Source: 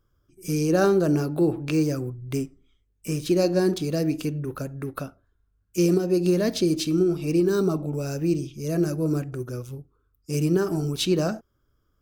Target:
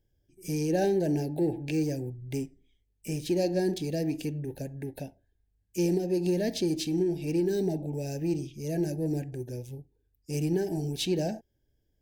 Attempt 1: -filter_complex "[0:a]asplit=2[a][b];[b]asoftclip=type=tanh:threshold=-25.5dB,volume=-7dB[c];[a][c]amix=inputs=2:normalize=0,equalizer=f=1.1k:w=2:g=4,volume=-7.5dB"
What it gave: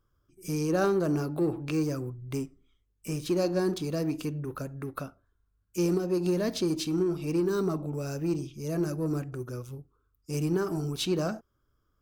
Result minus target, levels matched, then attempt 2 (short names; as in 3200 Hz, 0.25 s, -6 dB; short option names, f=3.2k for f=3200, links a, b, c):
1000 Hz band +3.0 dB
-filter_complex "[0:a]asplit=2[a][b];[b]asoftclip=type=tanh:threshold=-25.5dB,volume=-7dB[c];[a][c]amix=inputs=2:normalize=0,asuperstop=centerf=1200:order=12:qfactor=1.7,equalizer=f=1.1k:w=2:g=4,volume=-7.5dB"